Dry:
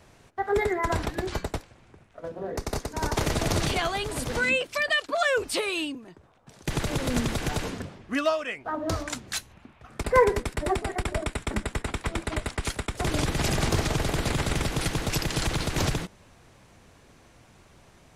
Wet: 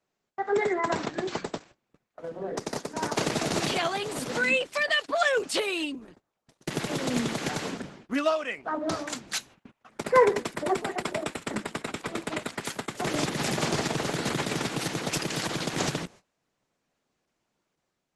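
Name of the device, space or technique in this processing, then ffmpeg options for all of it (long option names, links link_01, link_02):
video call: -af "highpass=frequency=150:width=0.5412,highpass=frequency=150:width=1.3066,dynaudnorm=framelen=110:gausssize=9:maxgain=3dB,agate=range=-22dB:threshold=-46dB:ratio=16:detection=peak,volume=-2.5dB" -ar 48000 -c:a libopus -b:a 12k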